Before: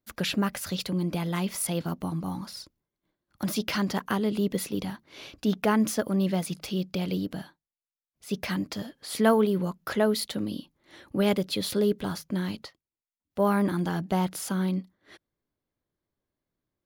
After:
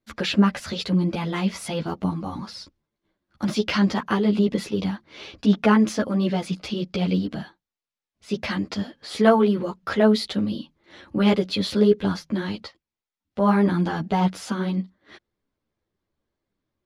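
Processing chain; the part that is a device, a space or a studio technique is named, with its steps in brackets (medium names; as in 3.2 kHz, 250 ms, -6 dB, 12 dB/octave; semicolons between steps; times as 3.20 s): string-machine ensemble chorus (three-phase chorus; low-pass 5.3 kHz 12 dB/octave); trim +8 dB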